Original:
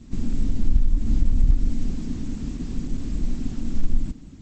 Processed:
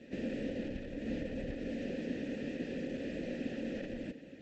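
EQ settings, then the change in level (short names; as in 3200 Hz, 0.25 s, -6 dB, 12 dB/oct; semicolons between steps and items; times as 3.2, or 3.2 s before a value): vowel filter e; air absorption 57 m; low shelf 110 Hz -8 dB; +16.0 dB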